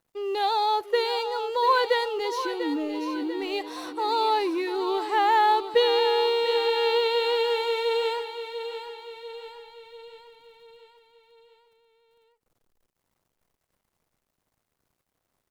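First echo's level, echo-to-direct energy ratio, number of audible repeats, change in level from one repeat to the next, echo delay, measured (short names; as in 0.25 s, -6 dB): -10.0 dB, -8.5 dB, 5, -5.5 dB, 0.693 s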